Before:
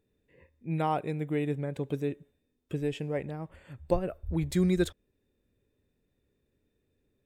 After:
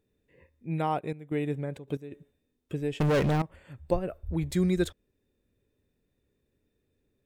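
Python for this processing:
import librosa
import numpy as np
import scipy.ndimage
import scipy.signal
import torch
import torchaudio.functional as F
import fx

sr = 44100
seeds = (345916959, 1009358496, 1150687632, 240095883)

y = fx.step_gate(x, sr, bpm=160, pattern='x.x..xxxx', floor_db=-12.0, edge_ms=4.5, at=(0.98, 2.11), fade=0.02)
y = fx.leveller(y, sr, passes=5, at=(3.0, 3.42))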